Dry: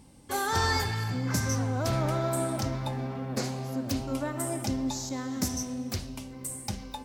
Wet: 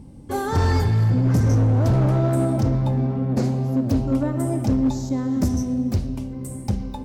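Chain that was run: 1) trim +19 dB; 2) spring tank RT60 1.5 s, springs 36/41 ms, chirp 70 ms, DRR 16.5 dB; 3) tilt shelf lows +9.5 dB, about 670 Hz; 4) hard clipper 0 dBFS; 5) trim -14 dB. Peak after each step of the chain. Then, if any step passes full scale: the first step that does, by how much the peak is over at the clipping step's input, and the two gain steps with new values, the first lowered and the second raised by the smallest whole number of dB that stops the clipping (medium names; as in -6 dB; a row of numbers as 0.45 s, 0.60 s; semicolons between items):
+3.5 dBFS, +3.5 dBFS, +8.5 dBFS, 0.0 dBFS, -14.0 dBFS; step 1, 8.5 dB; step 1 +10 dB, step 5 -5 dB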